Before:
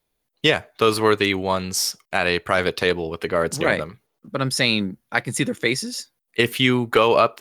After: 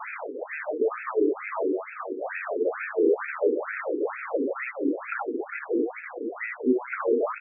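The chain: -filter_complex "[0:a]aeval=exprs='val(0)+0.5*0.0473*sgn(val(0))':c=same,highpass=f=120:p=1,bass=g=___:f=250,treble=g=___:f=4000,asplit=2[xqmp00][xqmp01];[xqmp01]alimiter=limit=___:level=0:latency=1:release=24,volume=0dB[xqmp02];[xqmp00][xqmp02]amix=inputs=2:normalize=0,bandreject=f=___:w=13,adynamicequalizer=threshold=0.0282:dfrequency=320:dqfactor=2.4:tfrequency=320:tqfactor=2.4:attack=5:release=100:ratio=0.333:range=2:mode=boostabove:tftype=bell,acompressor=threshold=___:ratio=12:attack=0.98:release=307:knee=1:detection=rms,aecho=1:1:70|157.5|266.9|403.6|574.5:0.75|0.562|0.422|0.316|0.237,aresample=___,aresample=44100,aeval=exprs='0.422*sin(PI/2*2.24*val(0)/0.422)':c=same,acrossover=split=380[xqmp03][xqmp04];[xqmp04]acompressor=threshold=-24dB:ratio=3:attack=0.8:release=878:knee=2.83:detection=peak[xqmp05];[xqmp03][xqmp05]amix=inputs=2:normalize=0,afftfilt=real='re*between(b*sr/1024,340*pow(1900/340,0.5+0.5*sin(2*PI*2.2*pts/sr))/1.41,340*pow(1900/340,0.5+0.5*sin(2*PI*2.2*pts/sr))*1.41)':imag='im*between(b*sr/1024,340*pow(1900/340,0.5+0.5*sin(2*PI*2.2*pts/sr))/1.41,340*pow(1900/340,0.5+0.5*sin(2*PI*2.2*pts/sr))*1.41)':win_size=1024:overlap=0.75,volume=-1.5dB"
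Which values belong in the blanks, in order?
-12, -1, -10dB, 3300, -16dB, 11025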